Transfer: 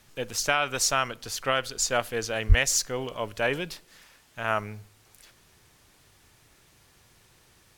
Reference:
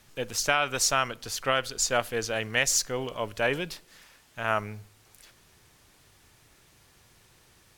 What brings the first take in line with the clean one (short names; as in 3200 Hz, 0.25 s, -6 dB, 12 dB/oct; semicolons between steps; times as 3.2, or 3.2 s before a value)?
2.48–2.6 HPF 140 Hz 24 dB/oct